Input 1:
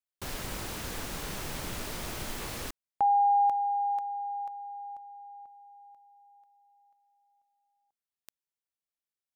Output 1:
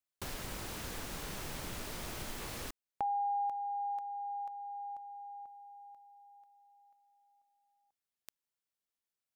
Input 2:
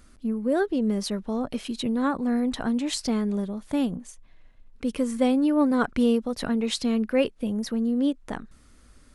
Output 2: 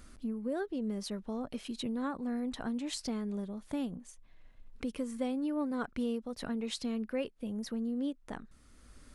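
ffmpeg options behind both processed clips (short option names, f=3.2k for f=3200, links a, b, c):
-af "acompressor=threshold=-41dB:ratio=2:attack=22:release=701:detection=rms"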